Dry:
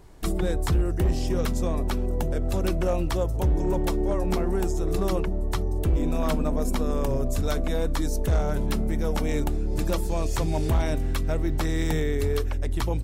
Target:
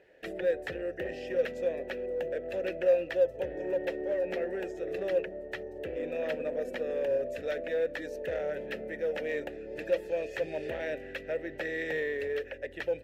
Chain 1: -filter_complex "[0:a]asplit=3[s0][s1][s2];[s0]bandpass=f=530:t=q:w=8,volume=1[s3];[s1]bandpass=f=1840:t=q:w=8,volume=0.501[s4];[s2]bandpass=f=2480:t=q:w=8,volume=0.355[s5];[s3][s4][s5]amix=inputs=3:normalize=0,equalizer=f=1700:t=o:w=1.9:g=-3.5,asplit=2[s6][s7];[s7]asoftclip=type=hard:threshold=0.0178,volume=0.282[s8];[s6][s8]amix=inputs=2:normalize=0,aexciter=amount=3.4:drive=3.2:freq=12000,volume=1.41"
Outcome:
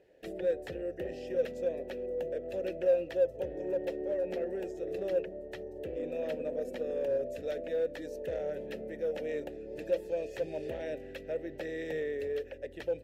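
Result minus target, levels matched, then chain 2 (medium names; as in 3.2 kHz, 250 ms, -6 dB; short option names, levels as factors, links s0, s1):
2 kHz band -7.5 dB
-filter_complex "[0:a]asplit=3[s0][s1][s2];[s0]bandpass=f=530:t=q:w=8,volume=1[s3];[s1]bandpass=f=1840:t=q:w=8,volume=0.501[s4];[s2]bandpass=f=2480:t=q:w=8,volume=0.355[s5];[s3][s4][s5]amix=inputs=3:normalize=0,equalizer=f=1700:t=o:w=1.9:g=7,asplit=2[s6][s7];[s7]asoftclip=type=hard:threshold=0.0178,volume=0.282[s8];[s6][s8]amix=inputs=2:normalize=0,aexciter=amount=3.4:drive=3.2:freq=12000,volume=1.41"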